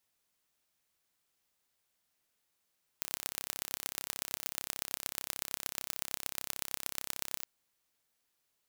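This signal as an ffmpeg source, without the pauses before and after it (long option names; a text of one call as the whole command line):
ffmpeg -f lavfi -i "aevalsrc='0.501*eq(mod(n,1324),0)*(0.5+0.5*eq(mod(n,5296),0))':duration=4.43:sample_rate=44100" out.wav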